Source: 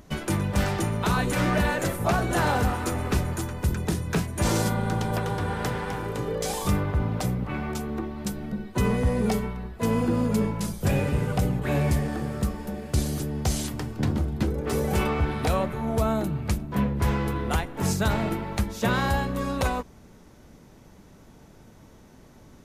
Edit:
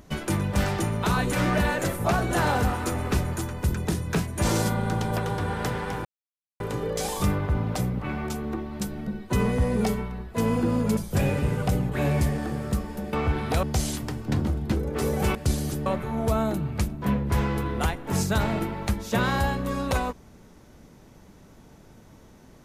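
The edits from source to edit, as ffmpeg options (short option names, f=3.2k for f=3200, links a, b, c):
-filter_complex "[0:a]asplit=7[a][b][c][d][e][f][g];[a]atrim=end=6.05,asetpts=PTS-STARTPTS,afade=t=out:st=6.046:d=0.004:c=hsin,apad=pad_dur=0.55[h];[b]atrim=start=6.05:end=10.422,asetpts=PTS-STARTPTS,afade=t=in:d=0.004:c=hsin[i];[c]atrim=start=10.668:end=12.832[j];[d]atrim=start=15.058:end=15.562[k];[e]atrim=start=13.338:end=15.062[l];[f]atrim=start=12.828:end=13.342[m];[g]atrim=start=15.558[n];[h][i]concat=n=2:v=0:a=1[o];[o][j]acrossfade=d=0.004:c1=hsin:c2=hsin[p];[p][k]acrossfade=d=0.004:c1=hsin:c2=hsin[q];[q][l]acrossfade=d=0.004:c1=hsin:c2=hsin[r];[r][m]acrossfade=d=0.004:c1=hsin:c2=hsin[s];[s][n]acrossfade=d=0.004:c1=hsin:c2=hsin"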